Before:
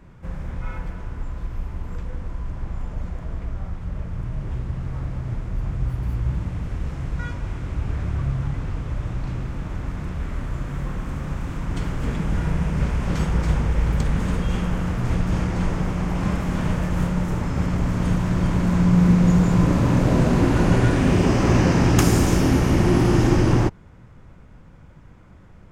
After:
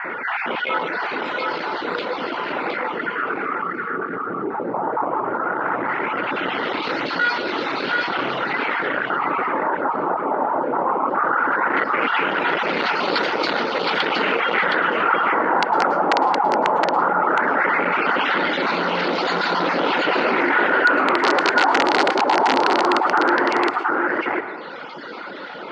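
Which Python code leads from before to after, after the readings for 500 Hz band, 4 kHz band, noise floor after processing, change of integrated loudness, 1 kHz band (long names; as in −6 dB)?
+6.5 dB, +11.0 dB, −30 dBFS, +2.5 dB, +14.5 dB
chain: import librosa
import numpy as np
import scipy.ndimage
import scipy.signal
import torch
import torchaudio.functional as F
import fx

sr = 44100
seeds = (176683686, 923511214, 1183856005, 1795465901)

p1 = fx.spec_dropout(x, sr, seeds[0], share_pct=23)
p2 = fx.dereverb_blind(p1, sr, rt60_s=1.6)
p3 = fx.spec_box(p2, sr, start_s=2.92, length_s=1.62, low_hz=490.0, high_hz=1100.0, gain_db=-20)
p4 = fx.peak_eq(p3, sr, hz=480.0, db=7.5, octaves=1.6)
p5 = fx.rider(p4, sr, range_db=5, speed_s=0.5)
p6 = p4 + F.gain(torch.from_numpy(p5), 3.0).numpy()
p7 = 10.0 ** (-14.5 / 20.0) * np.tanh(p6 / 10.0 ** (-14.5 / 20.0))
p8 = fx.filter_lfo_lowpass(p7, sr, shape='sine', hz=0.17, low_hz=840.0, high_hz=4300.0, q=3.7)
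p9 = (np.mod(10.0 ** (8.5 / 20.0) * p8 + 1.0, 2.0) - 1.0) / 10.0 ** (8.5 / 20.0)
p10 = fx.cabinet(p9, sr, low_hz=290.0, low_slope=24, high_hz=6100.0, hz=(870.0, 1400.0, 2000.0, 2900.0, 4400.0), db=(5, 10, 5, 4, 7))
p11 = p10 + fx.echo_single(p10, sr, ms=717, db=-5.0, dry=0)
p12 = fx.rev_plate(p11, sr, seeds[1], rt60_s=0.61, hf_ratio=0.45, predelay_ms=95, drr_db=16.5)
p13 = fx.env_flatten(p12, sr, amount_pct=50)
y = F.gain(torch.from_numpy(p13), -7.5).numpy()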